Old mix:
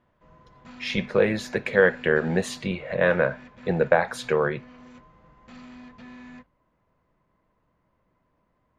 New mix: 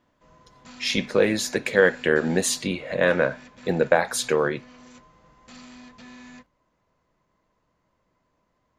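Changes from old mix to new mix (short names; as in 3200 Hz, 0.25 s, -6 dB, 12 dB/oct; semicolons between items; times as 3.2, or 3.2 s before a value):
speech: add bell 280 Hz +11.5 dB 0.39 oct; master: add tone controls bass -3 dB, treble +15 dB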